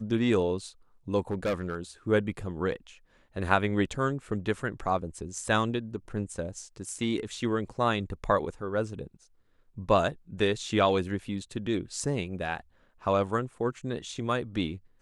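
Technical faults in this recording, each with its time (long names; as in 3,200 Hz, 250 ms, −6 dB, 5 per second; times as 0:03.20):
0:01.30–0:01.76: clipping −24.5 dBFS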